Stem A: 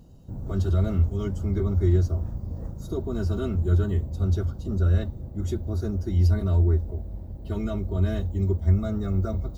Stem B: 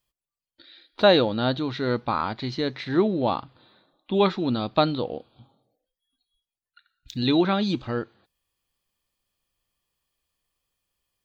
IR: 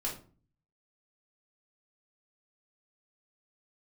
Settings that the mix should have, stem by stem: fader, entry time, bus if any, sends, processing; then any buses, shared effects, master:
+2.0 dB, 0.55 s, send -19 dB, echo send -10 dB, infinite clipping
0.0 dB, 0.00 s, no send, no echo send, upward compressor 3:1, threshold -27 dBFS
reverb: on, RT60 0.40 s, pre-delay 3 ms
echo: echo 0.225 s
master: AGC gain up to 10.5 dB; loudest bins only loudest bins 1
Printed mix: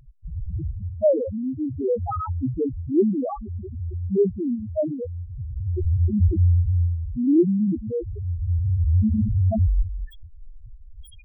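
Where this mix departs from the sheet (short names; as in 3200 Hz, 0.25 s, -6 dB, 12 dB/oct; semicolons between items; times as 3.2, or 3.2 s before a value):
stem A: entry 0.55 s -> 0.25 s; stem B 0.0 dB -> +12.0 dB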